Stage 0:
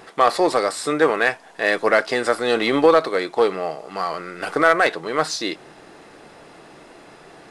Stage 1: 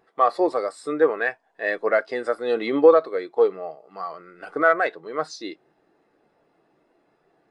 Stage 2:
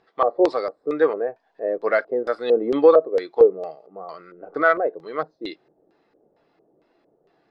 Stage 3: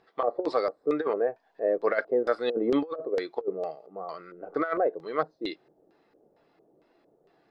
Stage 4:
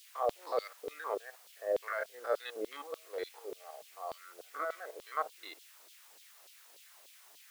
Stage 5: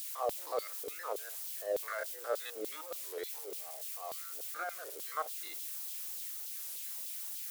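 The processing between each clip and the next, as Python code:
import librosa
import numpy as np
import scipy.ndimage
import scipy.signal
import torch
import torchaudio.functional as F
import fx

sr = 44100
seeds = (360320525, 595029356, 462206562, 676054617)

y1 = fx.spectral_expand(x, sr, expansion=1.5)
y2 = fx.filter_lfo_lowpass(y1, sr, shape='square', hz=2.2, low_hz=520.0, high_hz=4600.0, q=1.9)
y3 = fx.over_compress(y2, sr, threshold_db=-20.0, ratio=-0.5)
y3 = y3 * librosa.db_to_amplitude(-4.5)
y4 = fx.spec_steps(y3, sr, hold_ms=50)
y4 = fx.dmg_noise_colour(y4, sr, seeds[0], colour='white', level_db=-53.0)
y4 = fx.filter_lfo_highpass(y4, sr, shape='saw_down', hz=3.4, low_hz=470.0, high_hz=3700.0, q=2.1)
y4 = y4 * librosa.db_to_amplitude(-6.5)
y5 = y4 + 0.5 * 10.0 ** (-36.5 / 20.0) * np.diff(np.sign(y4), prepend=np.sign(y4[:1]))
y5 = fx.record_warp(y5, sr, rpm=33.33, depth_cents=160.0)
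y5 = y5 * librosa.db_to_amplitude(-2.5)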